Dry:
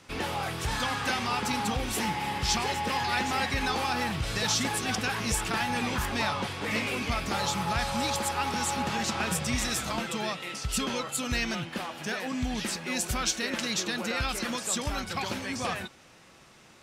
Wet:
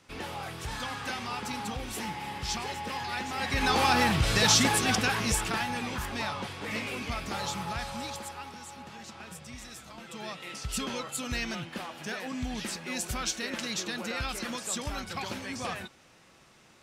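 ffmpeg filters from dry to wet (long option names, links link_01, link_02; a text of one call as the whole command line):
ffmpeg -i in.wav -af "volume=17.5dB,afade=type=in:start_time=3.36:duration=0.49:silence=0.266073,afade=type=out:start_time=4.56:duration=1.25:silence=0.316228,afade=type=out:start_time=7.52:duration=1.08:silence=0.281838,afade=type=in:start_time=9.97:duration=0.57:silence=0.251189" out.wav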